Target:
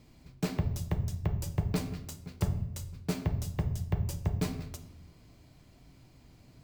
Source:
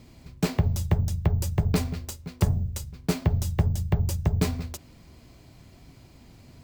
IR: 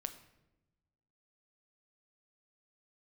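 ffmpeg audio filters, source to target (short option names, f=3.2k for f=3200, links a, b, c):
-filter_complex "[1:a]atrim=start_sample=2205[a];[0:a][a]afir=irnorm=-1:irlink=0,volume=-5dB"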